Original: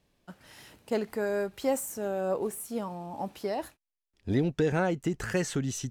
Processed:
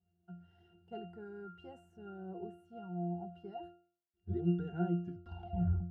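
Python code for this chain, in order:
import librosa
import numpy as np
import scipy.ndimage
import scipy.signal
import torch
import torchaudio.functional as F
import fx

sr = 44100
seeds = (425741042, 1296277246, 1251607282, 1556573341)

y = fx.tape_stop_end(x, sr, length_s=0.99)
y = fx.octave_resonator(y, sr, note='F', decay_s=0.45)
y = F.gain(torch.from_numpy(y), 6.5).numpy()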